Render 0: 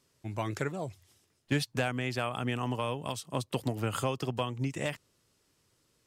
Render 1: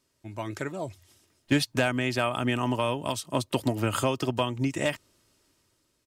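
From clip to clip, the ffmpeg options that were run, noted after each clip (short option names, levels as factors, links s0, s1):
-af "aecho=1:1:3.2:0.36,dynaudnorm=f=320:g=5:m=2.51,volume=0.75"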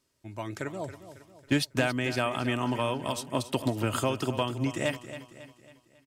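-af "aecho=1:1:274|548|822|1096|1370:0.237|0.109|0.0502|0.0231|0.0106,volume=0.794"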